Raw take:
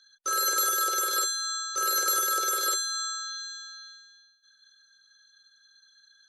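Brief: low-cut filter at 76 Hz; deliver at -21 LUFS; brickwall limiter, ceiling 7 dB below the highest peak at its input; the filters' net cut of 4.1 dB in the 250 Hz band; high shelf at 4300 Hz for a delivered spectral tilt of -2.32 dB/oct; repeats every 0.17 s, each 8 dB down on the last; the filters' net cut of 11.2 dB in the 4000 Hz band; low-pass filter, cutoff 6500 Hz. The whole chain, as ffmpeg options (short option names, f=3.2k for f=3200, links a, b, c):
-af "highpass=76,lowpass=6.5k,equalizer=f=250:t=o:g=-8,equalizer=f=4k:t=o:g=-9,highshelf=f=4.3k:g=-4.5,alimiter=level_in=3dB:limit=-24dB:level=0:latency=1,volume=-3dB,aecho=1:1:170|340|510|680|850:0.398|0.159|0.0637|0.0255|0.0102,volume=13dB"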